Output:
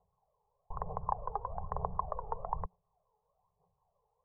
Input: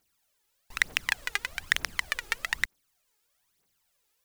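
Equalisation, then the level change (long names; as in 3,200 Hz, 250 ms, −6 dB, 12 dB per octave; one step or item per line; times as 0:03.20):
Chebyshev band-stop filter 180–420 Hz, order 4
Chebyshev low-pass with heavy ripple 1,100 Hz, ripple 3 dB
+11.5 dB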